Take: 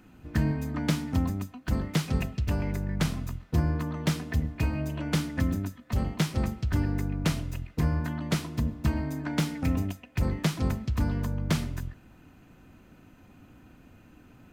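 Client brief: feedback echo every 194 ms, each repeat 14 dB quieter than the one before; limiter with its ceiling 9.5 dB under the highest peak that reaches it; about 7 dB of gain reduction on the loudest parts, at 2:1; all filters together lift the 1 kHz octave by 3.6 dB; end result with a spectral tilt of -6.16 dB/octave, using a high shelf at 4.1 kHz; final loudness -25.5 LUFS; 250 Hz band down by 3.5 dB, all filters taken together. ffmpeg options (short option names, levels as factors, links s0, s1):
-af "equalizer=f=250:t=o:g=-5.5,equalizer=f=1000:t=o:g=5,highshelf=f=4100:g=-3,acompressor=threshold=0.0178:ratio=2,alimiter=level_in=1.78:limit=0.0631:level=0:latency=1,volume=0.562,aecho=1:1:194|388:0.2|0.0399,volume=5.01"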